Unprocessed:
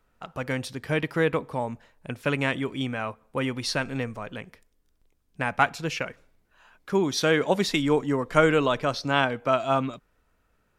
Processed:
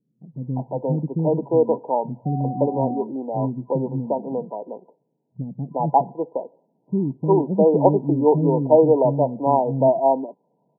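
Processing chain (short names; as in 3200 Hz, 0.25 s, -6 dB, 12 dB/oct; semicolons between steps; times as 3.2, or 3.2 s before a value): bands offset in time lows, highs 0.35 s, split 280 Hz; 2.25–3.02 whine 740 Hz -38 dBFS; FFT band-pass 120–1000 Hz; gain +8.5 dB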